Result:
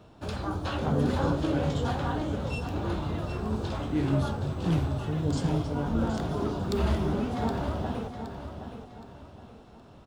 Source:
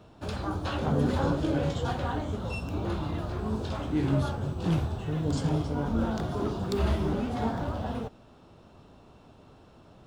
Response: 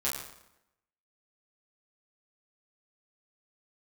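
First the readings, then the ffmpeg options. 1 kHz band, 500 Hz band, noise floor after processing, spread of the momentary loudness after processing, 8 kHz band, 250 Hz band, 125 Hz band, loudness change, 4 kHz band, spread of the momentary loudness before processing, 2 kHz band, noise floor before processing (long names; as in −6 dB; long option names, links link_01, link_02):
+0.5 dB, +0.5 dB, −51 dBFS, 13 LU, +0.5 dB, +0.5 dB, +0.5 dB, +0.5 dB, +0.5 dB, 6 LU, +0.5 dB, −55 dBFS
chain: -af "aecho=1:1:769|1538|2307|3076:0.355|0.128|0.046|0.0166"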